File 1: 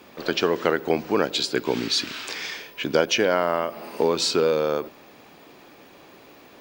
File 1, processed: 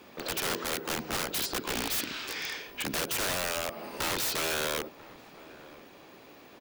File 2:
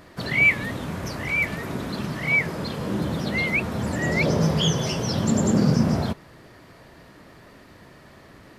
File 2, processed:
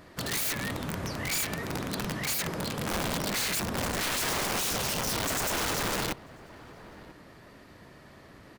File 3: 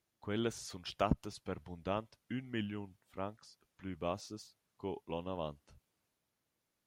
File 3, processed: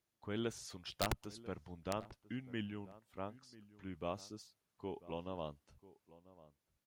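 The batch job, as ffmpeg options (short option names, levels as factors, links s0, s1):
-filter_complex "[0:a]aeval=exprs='(mod(11.9*val(0)+1,2)-1)/11.9':c=same,asplit=2[s0][s1];[s1]adelay=991.3,volume=0.126,highshelf=f=4000:g=-22.3[s2];[s0][s2]amix=inputs=2:normalize=0,volume=0.668"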